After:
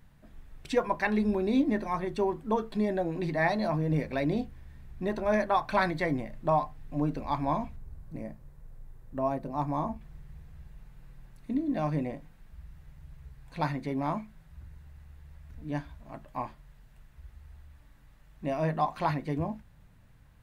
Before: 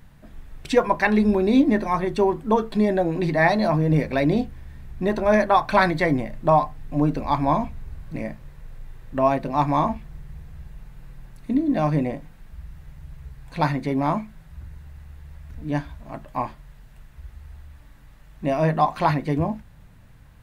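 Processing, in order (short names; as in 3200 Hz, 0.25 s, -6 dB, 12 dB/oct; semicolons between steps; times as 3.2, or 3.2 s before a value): 7.76–10.01 bell 2800 Hz -10 dB 2.1 oct; gain -8.5 dB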